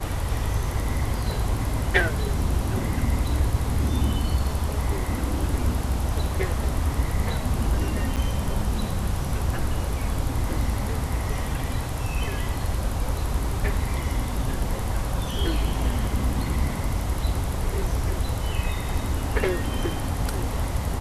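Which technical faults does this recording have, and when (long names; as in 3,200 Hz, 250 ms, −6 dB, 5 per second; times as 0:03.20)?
0:08.16–0:08.17: drop-out 6.6 ms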